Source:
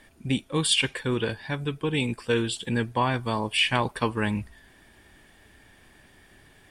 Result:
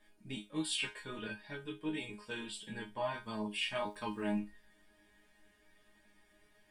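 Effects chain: chorus 1.5 Hz, delay 18 ms, depth 4.8 ms; chord resonator G#3 fifth, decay 0.22 s; 3.78–4.38 s: crackle 450 per s -65 dBFS; trim +4.5 dB

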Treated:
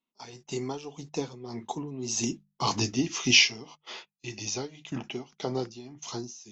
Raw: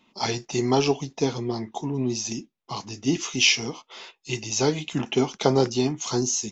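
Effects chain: Doppler pass-by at 2.79 s, 12 m/s, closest 2.9 m; in parallel at +2 dB: compression, threshold -48 dBFS, peak gain reduction 25 dB; on the sum: gate -49 dBFS, range -20 dB; tremolo 1.8 Hz, depth 76%; hum notches 50/100/150/200 Hz; trim +8 dB

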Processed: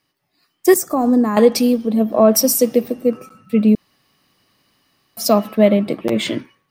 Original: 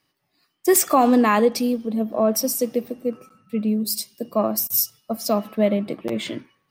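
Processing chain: 0.74–1.37 s: FFT filter 140 Hz 0 dB, 1.7 kHz -15 dB, 2.8 kHz -28 dB, 5.9 kHz -9 dB; 3.75–5.17 s: room tone; level rider gain up to 8.5 dB; trim +1 dB

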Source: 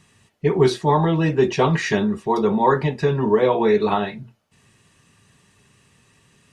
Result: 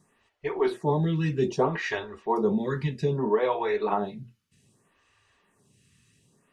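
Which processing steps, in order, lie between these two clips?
lamp-driven phase shifter 0.63 Hz; trim -4.5 dB

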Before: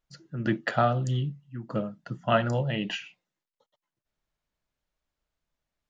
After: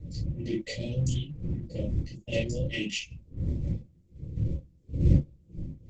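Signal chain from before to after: partial rectifier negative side -3 dB; wind noise 120 Hz -30 dBFS; 0.96–3.03 s: gate -36 dBFS, range -49 dB; reverb removal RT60 0.82 s; tone controls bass -1 dB, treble +13 dB; level held to a coarse grid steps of 11 dB; saturation -14 dBFS, distortion -22 dB; brick-wall FIR band-stop 620–1900 Hz; comb of notches 410 Hz; reverberation, pre-delay 3 ms, DRR -1.5 dB; Opus 12 kbps 48 kHz

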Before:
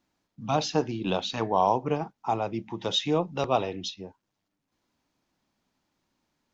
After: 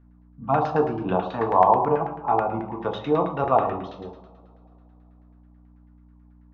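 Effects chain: hum 60 Hz, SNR 24 dB; two-slope reverb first 0.93 s, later 3.3 s, from -24 dB, DRR 1.5 dB; LFO low-pass saw down 9.2 Hz 800–1800 Hz

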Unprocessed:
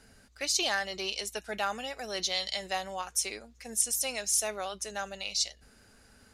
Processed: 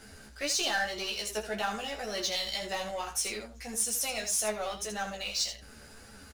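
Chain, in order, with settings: power-law waveshaper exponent 0.7; early reflections 14 ms -3 dB, 80 ms -8 dB; flange 1.8 Hz, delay 8.4 ms, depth 5.8 ms, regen +44%; trim -3 dB

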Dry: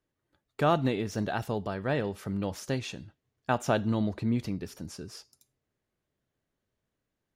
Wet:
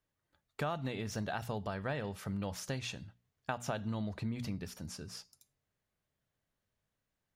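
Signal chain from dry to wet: peaking EQ 340 Hz -8 dB 1 oct; hum notches 60/120/180/240 Hz; compression 6:1, threshold -32 dBFS, peak gain reduction 10.5 dB; trim -1 dB

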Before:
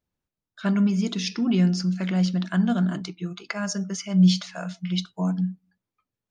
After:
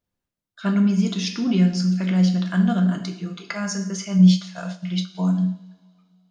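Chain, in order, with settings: two-slope reverb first 0.62 s, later 2.8 s, from -25 dB, DRR 3.5 dB; 4.18–5.15 s: transient shaper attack -1 dB, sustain -6 dB

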